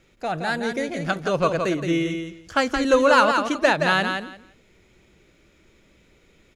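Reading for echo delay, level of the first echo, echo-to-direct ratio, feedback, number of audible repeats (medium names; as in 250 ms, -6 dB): 171 ms, -6.0 dB, -6.0 dB, 18%, 2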